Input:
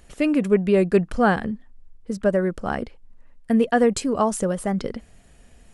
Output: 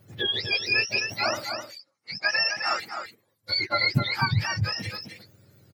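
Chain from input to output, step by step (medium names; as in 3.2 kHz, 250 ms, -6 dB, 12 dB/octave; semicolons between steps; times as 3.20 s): spectrum inverted on a logarithmic axis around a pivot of 1 kHz; 1.53–2.80 s: cabinet simulation 230–8000 Hz, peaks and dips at 820 Hz +6 dB, 1.3 kHz +10 dB, 2.1 kHz +6 dB, 3.6 kHz -8 dB, 5.5 kHz +8 dB; delay 260 ms -7 dB; trim -3 dB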